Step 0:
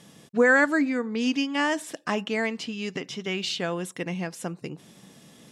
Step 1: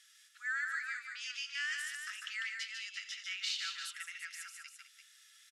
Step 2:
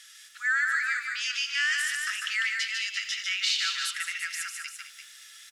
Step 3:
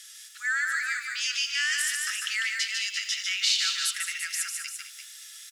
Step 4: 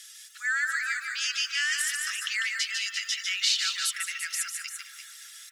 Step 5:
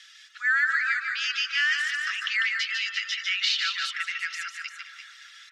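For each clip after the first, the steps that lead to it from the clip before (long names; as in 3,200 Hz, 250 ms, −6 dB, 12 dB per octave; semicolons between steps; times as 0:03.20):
brickwall limiter −19 dBFS, peak gain reduction 9 dB; Chebyshev high-pass with heavy ripple 1,300 Hz, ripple 3 dB; multi-tap delay 85/148/204/343 ms −17/−5/−11.5/−8.5 dB; level −5.5 dB
in parallel at −2 dB: brickwall limiter −33.5 dBFS, peak gain reduction 8 dB; on the sum: feedback echo at a low word length 225 ms, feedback 35%, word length 10 bits, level −15 dB; level +7.5 dB
Butterworth high-pass 910 Hz 48 dB per octave; high-shelf EQ 3,600 Hz +12 dB; level −4 dB
reverb reduction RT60 0.52 s; delay with a low-pass on its return 159 ms, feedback 77%, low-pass 1,000 Hz, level −4 dB
high-frequency loss of the air 220 metres; level +6.5 dB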